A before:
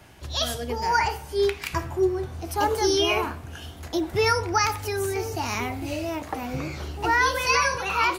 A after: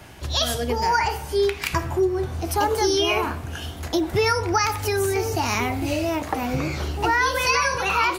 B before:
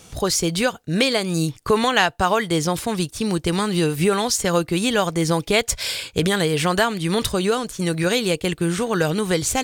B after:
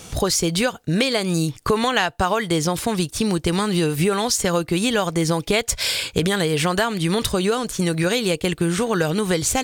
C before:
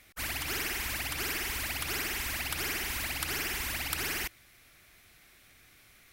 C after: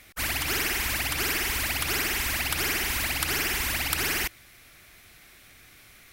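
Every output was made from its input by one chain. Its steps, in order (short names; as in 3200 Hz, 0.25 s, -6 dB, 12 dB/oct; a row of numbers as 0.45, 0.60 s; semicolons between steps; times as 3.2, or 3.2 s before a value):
compressor 2.5:1, threshold -26 dBFS; gain +6.5 dB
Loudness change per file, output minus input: +2.5, 0.0, +6.5 LU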